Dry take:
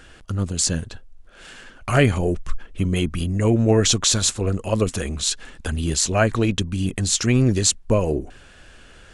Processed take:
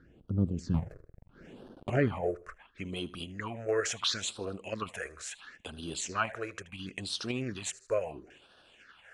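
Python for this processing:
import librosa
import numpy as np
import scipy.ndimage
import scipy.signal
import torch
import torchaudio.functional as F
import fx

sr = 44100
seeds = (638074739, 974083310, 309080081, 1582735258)

p1 = fx.halfwave_hold(x, sr, at=(0.74, 1.9))
p2 = p1 + fx.echo_feedback(p1, sr, ms=78, feedback_pct=39, wet_db=-19.5, dry=0)
p3 = fx.filter_sweep_bandpass(p2, sr, from_hz=230.0, to_hz=1600.0, start_s=1.32, end_s=2.78, q=0.73)
p4 = fx.level_steps(p3, sr, step_db=13)
p5 = p3 + F.gain(torch.from_numpy(p4), -3.0).numpy()
p6 = fx.phaser_stages(p5, sr, stages=6, low_hz=220.0, high_hz=2100.0, hz=0.73, feedback_pct=20)
y = F.gain(torch.from_numpy(p6), -5.5).numpy()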